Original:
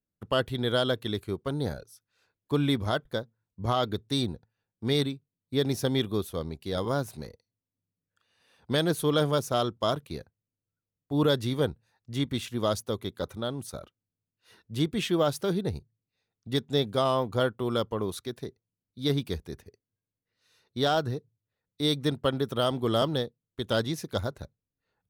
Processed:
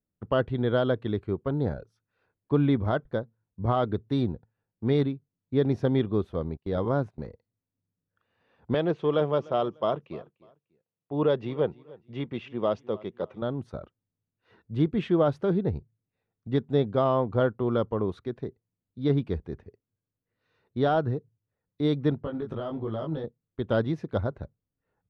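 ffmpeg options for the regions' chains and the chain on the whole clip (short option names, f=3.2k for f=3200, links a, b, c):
-filter_complex "[0:a]asettb=1/sr,asplit=3[a][b][c];[a]atrim=end=6.344[d];[b]atrim=start=6.34:end=7.26,asetpts=PTS-STARTPTS,afade=t=in:d=0.004:c=qsin,afade=t=out:st=0.916:d=0.004:c=qsin,agate=range=-21dB:threshold=-42dB:ratio=16:release=100:detection=peak,highshelf=f=12k:g=-4[e];[c]atrim=start=7.256[f];[d][e]acrossfade=d=0.004:c1=hsin:c2=qsin[g];[g][f]acrossfade=d=0.004:c1=qsin:c2=hsin,asettb=1/sr,asplit=3[h][i][j];[h]atrim=end=8.744[k];[i]atrim=start=8.74:end=13.42,asetpts=PTS-STARTPTS,afade=t=in:d=0.004:c=qsin,afade=t=out:st=4.676:d=0.004:c=qsin,highpass=200,equalizer=f=270:t=q:w=4:g=-8,equalizer=f=1.5k:t=q:w=4:g=-5,equalizer=f=2.7k:t=q:w=4:g=7,equalizer=f=4.1k:t=q:w=4:g=-5,lowpass=f=6k:w=0.5412,lowpass=f=6k:w=1.3066,aecho=1:1:298|596:0.0794|0.0238,atrim=end_sample=206388[l];[j]atrim=start=13.416[m];[k][l]acrossfade=d=0.004:c1=hsin:c2=qsin[n];[n][m]acrossfade=d=0.004:c1=qsin:c2=hsin,asettb=1/sr,asplit=3[o][p][q];[o]atrim=end=22.194[r];[p]atrim=start=22.19:end=23.24,asetpts=PTS-STARTPTS,afade=t=in:d=0.004:c=qsin,afade=t=out:st=1.046:d=0.004:c=qsin,acompressor=threshold=-32dB:ratio=12:attack=3.2:release=140:knee=1:detection=peak,asplit=2[s][t];[t]adelay=19,volume=-2.5dB[u];[s][u]amix=inputs=2:normalize=0,atrim=end_sample=46305[v];[q]atrim=start=23.236[w];[r][v]acrossfade=d=0.004:c1=hsin:c2=qsin[x];[x][w]acrossfade=d=0.004:c1=qsin:c2=hsin,lowpass=2.2k,tiltshelf=f=1.2k:g=3.5"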